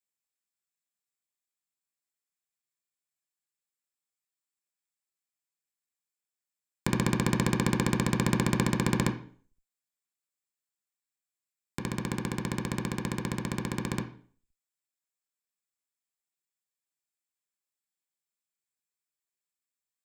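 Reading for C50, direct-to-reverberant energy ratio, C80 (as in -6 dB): 10.5 dB, 3.0 dB, 15.0 dB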